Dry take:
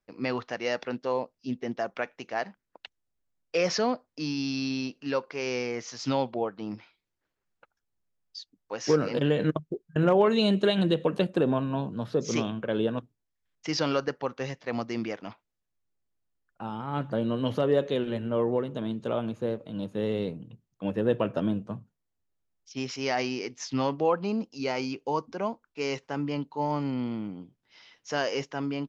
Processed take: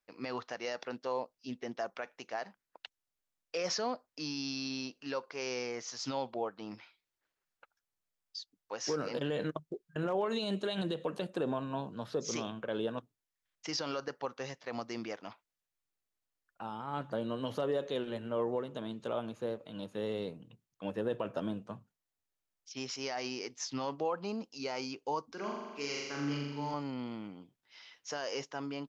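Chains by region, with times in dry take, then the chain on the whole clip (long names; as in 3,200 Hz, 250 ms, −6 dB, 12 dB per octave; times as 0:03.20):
0:25.33–0:26.74: high-pass filter 110 Hz + flat-topped bell 700 Hz −9.5 dB 1.2 octaves + flutter between parallel walls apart 7.2 metres, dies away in 1.2 s
whole clip: low-shelf EQ 470 Hz −12 dB; brickwall limiter −23.5 dBFS; dynamic equaliser 2,300 Hz, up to −6 dB, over −51 dBFS, Q 0.94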